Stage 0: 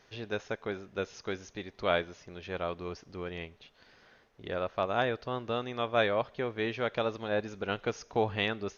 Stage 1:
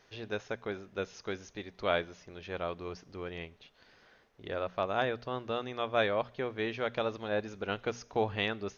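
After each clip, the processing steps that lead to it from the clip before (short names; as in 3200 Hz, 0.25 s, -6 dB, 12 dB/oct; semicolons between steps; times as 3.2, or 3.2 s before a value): notches 60/120/180/240 Hz; gain -1.5 dB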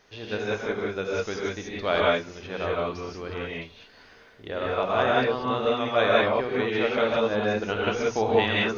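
non-linear reverb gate 0.21 s rising, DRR -5 dB; gain +3.5 dB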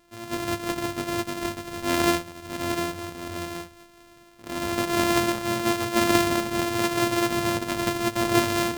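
sample sorter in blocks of 128 samples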